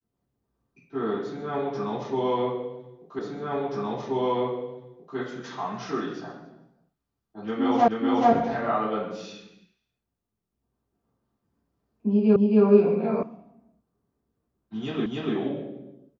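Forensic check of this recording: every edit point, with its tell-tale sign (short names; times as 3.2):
3.19 repeat of the last 1.98 s
7.88 repeat of the last 0.43 s
12.36 repeat of the last 0.27 s
13.23 sound cut off
15.06 repeat of the last 0.29 s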